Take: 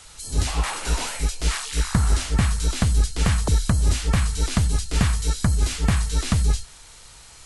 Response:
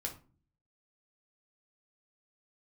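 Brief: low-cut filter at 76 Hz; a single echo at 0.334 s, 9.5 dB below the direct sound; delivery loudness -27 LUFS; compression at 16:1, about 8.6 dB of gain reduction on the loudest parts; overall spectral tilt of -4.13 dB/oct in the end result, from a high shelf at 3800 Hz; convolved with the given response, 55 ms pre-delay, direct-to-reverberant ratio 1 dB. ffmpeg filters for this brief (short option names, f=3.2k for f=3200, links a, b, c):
-filter_complex "[0:a]highpass=76,highshelf=f=3.8k:g=-4.5,acompressor=threshold=-26dB:ratio=16,aecho=1:1:334:0.335,asplit=2[a][b];[1:a]atrim=start_sample=2205,adelay=55[c];[b][c]afir=irnorm=-1:irlink=0,volume=-1dB[d];[a][d]amix=inputs=2:normalize=0,volume=1.5dB"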